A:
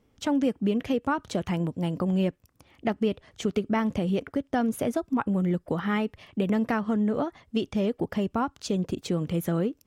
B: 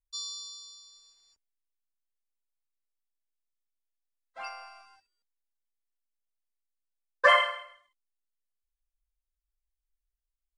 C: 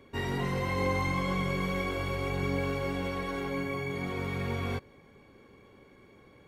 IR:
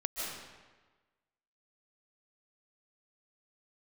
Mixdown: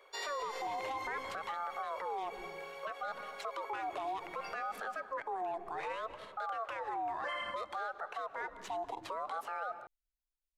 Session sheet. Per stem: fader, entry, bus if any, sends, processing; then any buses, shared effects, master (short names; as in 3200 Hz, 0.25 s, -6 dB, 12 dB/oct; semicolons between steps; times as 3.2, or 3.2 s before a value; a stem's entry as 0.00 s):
0.0 dB, 0.00 s, bus A, send -23.5 dB, median filter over 9 samples; LPF 9400 Hz 12 dB/oct; ring modulator with a swept carrier 770 Hz, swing 35%, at 0.63 Hz
-7.0 dB, 0.00 s, no bus, no send, dry
-1.0 dB, 0.00 s, bus A, no send, auto duck -10 dB, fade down 1.50 s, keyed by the first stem
bus A: 0.0 dB, steep high-pass 470 Hz 36 dB/oct; limiter -23 dBFS, peak gain reduction 7 dB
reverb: on, RT60 1.3 s, pre-delay 0.11 s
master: limiter -30.5 dBFS, peak gain reduction 14 dB